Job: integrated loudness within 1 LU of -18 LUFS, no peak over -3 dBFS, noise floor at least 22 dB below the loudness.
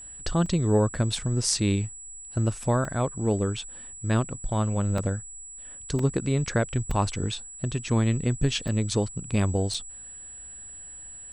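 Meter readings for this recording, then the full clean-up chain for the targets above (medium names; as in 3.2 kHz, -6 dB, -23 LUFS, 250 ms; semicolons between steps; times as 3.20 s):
dropouts 7; longest dropout 3.2 ms; steady tone 7.8 kHz; tone level -40 dBFS; loudness -27.0 LUFS; peak level -7.5 dBFS; loudness target -18.0 LUFS
-> interpolate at 0.46/2.85/4.98/5.99/6.91/8.68/9.74 s, 3.2 ms; band-stop 7.8 kHz, Q 30; trim +9 dB; peak limiter -3 dBFS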